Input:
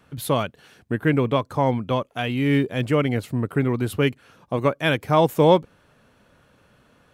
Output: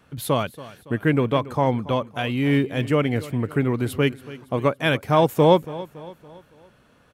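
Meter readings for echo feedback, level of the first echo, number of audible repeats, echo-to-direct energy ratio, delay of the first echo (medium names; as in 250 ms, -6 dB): 47%, -17.5 dB, 3, -16.5 dB, 281 ms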